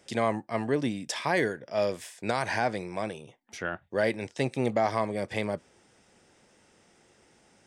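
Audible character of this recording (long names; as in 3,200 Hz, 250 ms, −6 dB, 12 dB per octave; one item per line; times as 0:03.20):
background noise floor −63 dBFS
spectral slope −4.5 dB per octave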